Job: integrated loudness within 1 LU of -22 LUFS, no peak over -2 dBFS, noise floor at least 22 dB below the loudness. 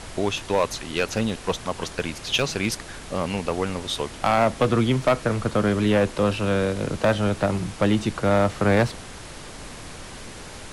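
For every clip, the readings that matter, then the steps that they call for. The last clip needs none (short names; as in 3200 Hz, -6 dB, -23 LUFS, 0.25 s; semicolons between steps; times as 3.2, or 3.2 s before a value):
clipped 0.7%; flat tops at -12.5 dBFS; noise floor -39 dBFS; noise floor target -46 dBFS; loudness -23.5 LUFS; peak -12.5 dBFS; loudness target -22.0 LUFS
-> clip repair -12.5 dBFS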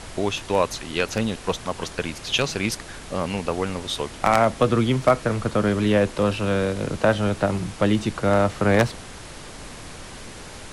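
clipped 0.0%; noise floor -39 dBFS; noise floor target -45 dBFS
-> noise print and reduce 6 dB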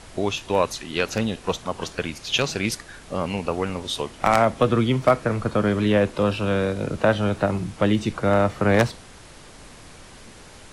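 noise floor -45 dBFS; loudness -23.0 LUFS; peak -3.5 dBFS; loudness target -22.0 LUFS
-> gain +1 dB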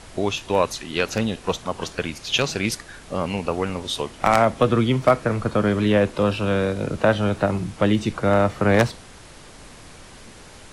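loudness -22.0 LUFS; peak -2.5 dBFS; noise floor -44 dBFS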